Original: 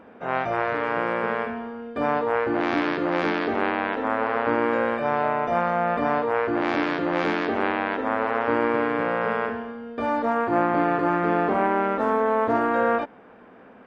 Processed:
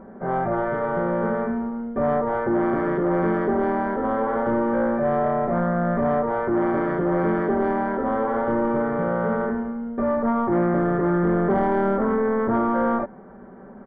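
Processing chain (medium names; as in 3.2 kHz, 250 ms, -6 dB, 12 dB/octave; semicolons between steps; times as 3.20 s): tilt EQ -3 dB/octave; comb 5.2 ms, depth 77%; saturation -15 dBFS, distortion -13 dB; Savitzky-Golay filter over 41 samples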